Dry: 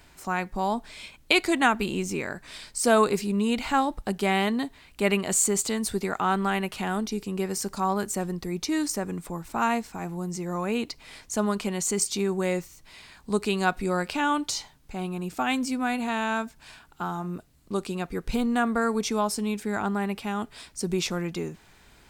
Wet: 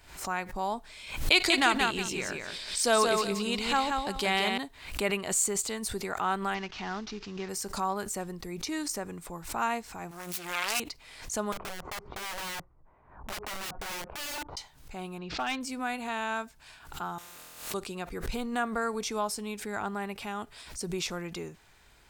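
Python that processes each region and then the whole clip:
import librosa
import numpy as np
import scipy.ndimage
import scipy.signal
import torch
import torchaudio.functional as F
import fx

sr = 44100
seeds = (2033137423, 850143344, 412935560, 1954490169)

y = fx.chain(x, sr, fx.peak_eq(hz=4200.0, db=8.0, octaves=1.3),
    fx.echo_feedback(ms=178, feedback_pct=22, wet_db=-4.0), at=(1.32, 4.58))
y = fx.chain(y, sr, fx.cvsd(bps=32000),
    fx.peak_eq(hz=530.0, db=-7.0, octaves=0.51), at=(6.54, 7.49))
y = fx.chain(y, sr, fx.self_delay(depth_ms=0.96),
    fx.tilt_shelf(db=-9.0, hz=850.0), at=(10.11, 10.8))
y = fx.chain(y, sr, fx.lowpass(hz=1100.0, slope=24),
    fx.overflow_wrap(gain_db=28.0), at=(11.52, 14.57))
y = fx.chain(y, sr, fx.steep_lowpass(hz=4800.0, slope=36),
    fx.high_shelf(hz=3500.0, db=5.5),
    fx.clip_hard(threshold_db=-21.0), at=(15.18, 15.61))
y = fx.chain(y, sr, fx.low_shelf(hz=400.0, db=-11.0),
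    fx.room_flutter(wall_m=4.1, rt60_s=0.85),
    fx.spectral_comp(ratio=4.0), at=(17.18, 17.74))
y = fx.peak_eq(y, sr, hz=220.0, db=-6.5, octaves=1.4)
y = fx.pre_swell(y, sr, db_per_s=94.0)
y = y * 10.0 ** (-4.0 / 20.0)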